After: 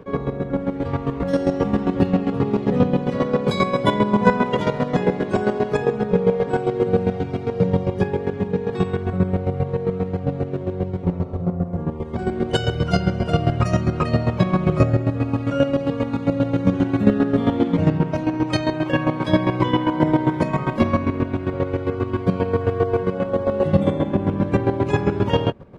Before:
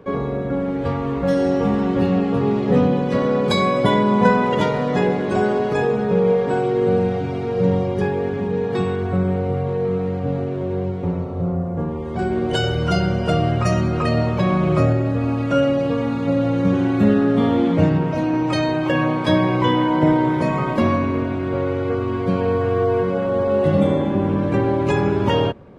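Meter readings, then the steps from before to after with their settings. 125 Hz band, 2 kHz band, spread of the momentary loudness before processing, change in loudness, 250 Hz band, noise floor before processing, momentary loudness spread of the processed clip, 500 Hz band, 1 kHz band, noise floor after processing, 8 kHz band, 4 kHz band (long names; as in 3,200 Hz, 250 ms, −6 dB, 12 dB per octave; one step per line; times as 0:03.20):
−0.5 dB, −2.5 dB, 6 LU, −1.5 dB, −1.5 dB, −25 dBFS, 6 LU, −2.5 dB, −2.5 dB, −30 dBFS, can't be measured, −3.0 dB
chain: low-shelf EQ 150 Hz +4 dB
reversed playback
upward compression, threshold −37 dBFS
reversed playback
square-wave tremolo 7.5 Hz, depth 65%, duty 25%
level +2 dB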